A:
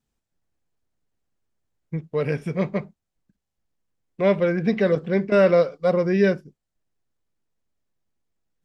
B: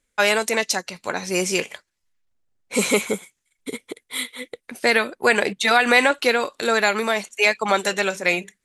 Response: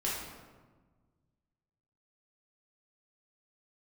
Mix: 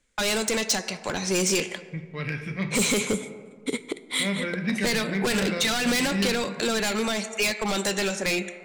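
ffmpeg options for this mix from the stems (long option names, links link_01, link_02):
-filter_complex "[0:a]equalizer=frequency=125:width_type=o:width=1:gain=3,equalizer=frequency=500:width_type=o:width=1:gain=-10,equalizer=frequency=2000:width_type=o:width=1:gain=9,equalizer=frequency=4000:width_type=o:width=1:gain=8,volume=-8.5dB,asplit=2[link_01][link_02];[link_02]volume=-9dB[link_03];[1:a]lowpass=frequency=9100:width=0.5412,lowpass=frequency=9100:width=1.3066,volume=2.5dB,asplit=2[link_04][link_05];[link_05]volume=-19dB[link_06];[2:a]atrim=start_sample=2205[link_07];[link_03][link_06]amix=inputs=2:normalize=0[link_08];[link_08][link_07]afir=irnorm=-1:irlink=0[link_09];[link_01][link_04][link_09]amix=inputs=3:normalize=0,volume=17dB,asoftclip=hard,volume=-17dB,acrossover=split=350|3000[link_10][link_11][link_12];[link_11]acompressor=threshold=-29dB:ratio=6[link_13];[link_10][link_13][link_12]amix=inputs=3:normalize=0"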